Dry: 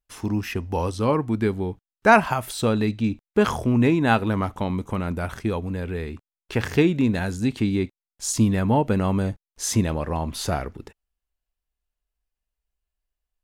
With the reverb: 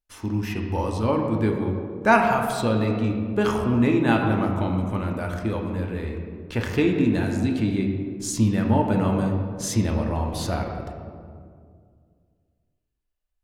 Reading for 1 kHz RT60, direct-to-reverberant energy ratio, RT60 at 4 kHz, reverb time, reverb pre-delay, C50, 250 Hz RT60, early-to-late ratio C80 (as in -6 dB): 1.9 s, 1.5 dB, 1.0 s, 2.2 s, 3 ms, 4.0 dB, 2.7 s, 5.0 dB